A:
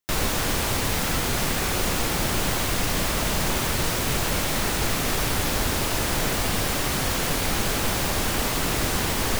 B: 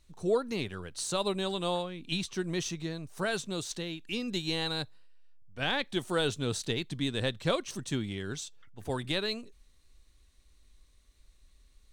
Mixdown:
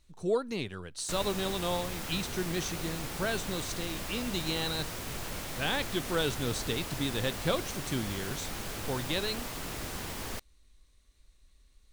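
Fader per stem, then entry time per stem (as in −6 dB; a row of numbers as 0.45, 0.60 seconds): −14.0, −1.0 decibels; 1.00, 0.00 seconds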